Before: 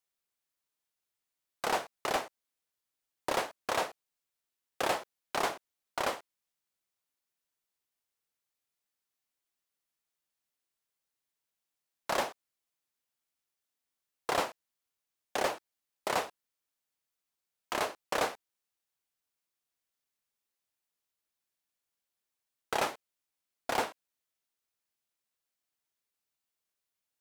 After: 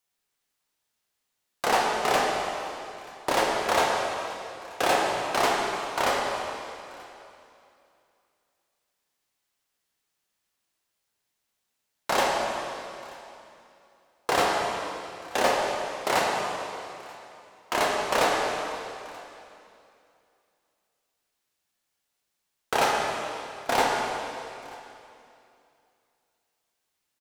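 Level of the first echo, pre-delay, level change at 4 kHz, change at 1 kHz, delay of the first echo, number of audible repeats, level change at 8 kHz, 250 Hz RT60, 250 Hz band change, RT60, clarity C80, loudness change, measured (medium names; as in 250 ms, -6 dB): -22.5 dB, 5 ms, +9.5 dB, +10.5 dB, 933 ms, 1, +8.5 dB, 2.8 s, +9.5 dB, 2.8 s, 1.0 dB, +7.5 dB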